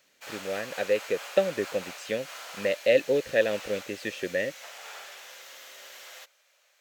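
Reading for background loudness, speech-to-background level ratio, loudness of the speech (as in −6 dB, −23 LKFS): −41.5 LKFS, 13.0 dB, −28.5 LKFS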